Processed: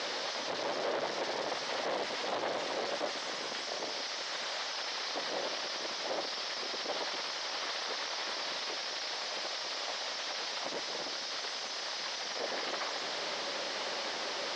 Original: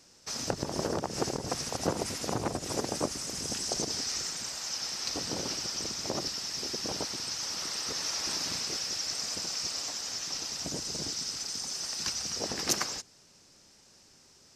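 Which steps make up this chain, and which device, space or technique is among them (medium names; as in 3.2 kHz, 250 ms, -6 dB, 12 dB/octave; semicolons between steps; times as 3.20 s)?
home computer beeper (one-bit comparator; cabinet simulation 520–4000 Hz, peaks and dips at 570 Hz +5 dB, 1.4 kHz -3 dB, 2.6 kHz -5 dB); trim +5.5 dB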